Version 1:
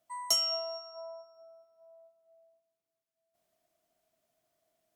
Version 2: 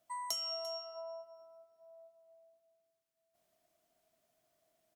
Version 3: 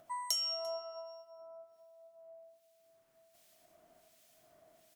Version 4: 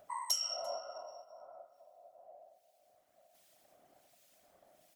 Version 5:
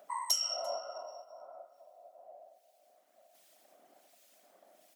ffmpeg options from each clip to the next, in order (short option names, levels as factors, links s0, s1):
-af "acompressor=threshold=0.01:ratio=3,aecho=1:1:344:0.168,volume=1.12"
-filter_complex "[0:a]asplit=2[s0][s1];[s1]acompressor=mode=upward:threshold=0.00398:ratio=2.5,volume=1[s2];[s0][s2]amix=inputs=2:normalize=0,acrossover=split=1900[s3][s4];[s3]aeval=exprs='val(0)*(1-0.7/2+0.7/2*cos(2*PI*1.3*n/s))':c=same[s5];[s4]aeval=exprs='val(0)*(1-0.7/2-0.7/2*cos(2*PI*1.3*n/s))':c=same[s6];[s5][s6]amix=inputs=2:normalize=0,volume=0.841"
-af "highpass=110,afftfilt=real='hypot(re,im)*cos(2*PI*random(0))':imag='hypot(re,im)*sin(2*PI*random(1))':win_size=512:overlap=0.75,volume=1.78"
-af "highpass=f=210:w=0.5412,highpass=f=210:w=1.3066,volume=1.41"